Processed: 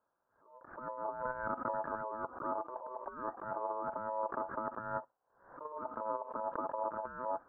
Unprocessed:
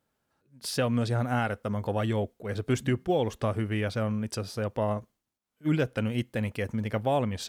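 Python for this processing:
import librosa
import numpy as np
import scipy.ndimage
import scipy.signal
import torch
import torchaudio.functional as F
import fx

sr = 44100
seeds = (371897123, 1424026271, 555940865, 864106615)

y = scipy.signal.sosfilt(scipy.signal.butter(8, 880.0, 'lowpass', fs=sr, output='sos'), x)
y = fx.over_compress(y, sr, threshold_db=-31.0, ratio=-0.5)
y = y * np.sin(2.0 * np.pi * 760.0 * np.arange(len(y)) / sr)
y = fx.low_shelf(y, sr, hz=240.0, db=-11.0)
y = fx.pre_swell(y, sr, db_per_s=100.0)
y = F.gain(torch.from_numpy(y), -2.5).numpy()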